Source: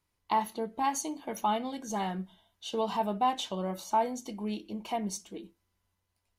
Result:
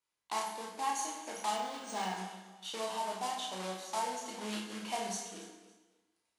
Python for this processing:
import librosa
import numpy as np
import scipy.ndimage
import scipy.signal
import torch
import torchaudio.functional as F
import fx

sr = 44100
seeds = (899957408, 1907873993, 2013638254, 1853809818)

y = fx.block_float(x, sr, bits=3)
y = fx.highpass(y, sr, hz=680.0, slope=6)
y = fx.rider(y, sr, range_db=5, speed_s=0.5)
y = scipy.signal.sosfilt(scipy.signal.butter(6, 11000.0, 'lowpass', fs=sr, output='sos'), y)
y = fx.doubler(y, sr, ms=32.0, db=-4.0)
y = fx.echo_feedback(y, sr, ms=279, feedback_pct=26, wet_db=-17)
y = fx.rev_plate(y, sr, seeds[0], rt60_s=1.1, hf_ratio=0.8, predelay_ms=0, drr_db=1.5)
y = fx.resample_linear(y, sr, factor=3, at=(1.56, 2.17))
y = F.gain(torch.from_numpy(y), -6.0).numpy()